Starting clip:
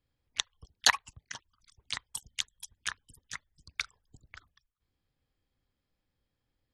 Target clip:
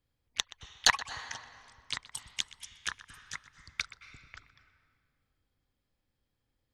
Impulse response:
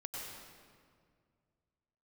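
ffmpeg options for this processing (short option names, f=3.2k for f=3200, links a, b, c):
-filter_complex "[0:a]acrossover=split=10000[a][b];[b]acompressor=threshold=-58dB:ratio=4:attack=1:release=60[c];[a][c]amix=inputs=2:normalize=0,asplit=2[d][e];[1:a]atrim=start_sample=2205,highshelf=f=4.8k:g=-11,adelay=124[f];[e][f]afir=irnorm=-1:irlink=0,volume=-10dB[g];[d][g]amix=inputs=2:normalize=0,aeval=exprs='0.596*(cos(1*acos(clip(val(0)/0.596,-1,1)))-cos(1*PI/2))+0.0188*(cos(6*acos(clip(val(0)/0.596,-1,1)))-cos(6*PI/2))':c=same"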